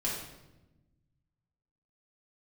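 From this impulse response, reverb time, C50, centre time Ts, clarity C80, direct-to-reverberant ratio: 1.0 s, 2.0 dB, 54 ms, 5.0 dB, -6.0 dB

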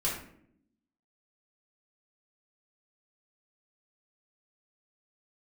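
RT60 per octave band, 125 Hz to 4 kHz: 0.95 s, 1.2 s, 0.80 s, 0.55 s, 0.55 s, 0.40 s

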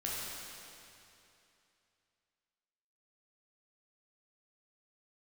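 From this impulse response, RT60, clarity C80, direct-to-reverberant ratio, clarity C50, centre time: 2.8 s, -1.5 dB, -6.5 dB, -3.0 dB, 174 ms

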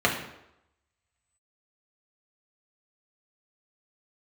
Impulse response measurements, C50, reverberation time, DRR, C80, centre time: 6.5 dB, 0.85 s, -2.0 dB, 9.5 dB, 28 ms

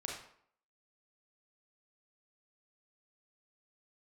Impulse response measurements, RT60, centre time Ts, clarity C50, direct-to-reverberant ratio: 0.65 s, 43 ms, 2.5 dB, -1.5 dB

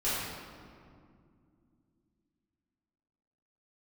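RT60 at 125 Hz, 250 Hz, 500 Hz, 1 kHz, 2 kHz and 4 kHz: 3.5 s, 3.8 s, 2.5 s, 2.1 s, 1.7 s, 1.3 s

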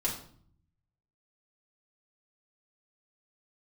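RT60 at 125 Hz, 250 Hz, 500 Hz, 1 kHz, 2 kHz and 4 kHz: 1.2 s, 0.90 s, 0.55 s, 0.50 s, 0.45 s, 0.45 s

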